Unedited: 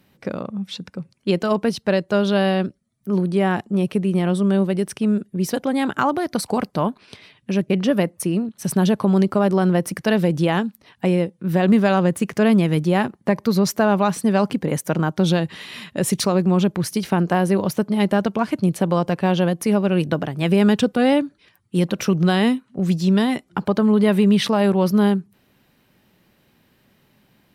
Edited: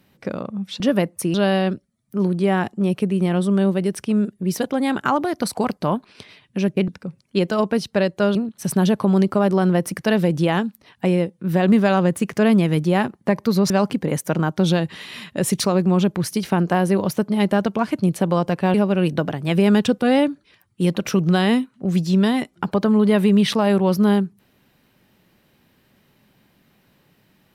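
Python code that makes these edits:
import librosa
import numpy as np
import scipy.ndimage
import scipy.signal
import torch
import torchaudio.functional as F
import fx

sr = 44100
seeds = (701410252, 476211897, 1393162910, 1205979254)

y = fx.edit(x, sr, fx.swap(start_s=0.8, length_s=1.47, other_s=7.81, other_length_s=0.54),
    fx.cut(start_s=13.7, length_s=0.6),
    fx.cut(start_s=19.34, length_s=0.34), tone=tone)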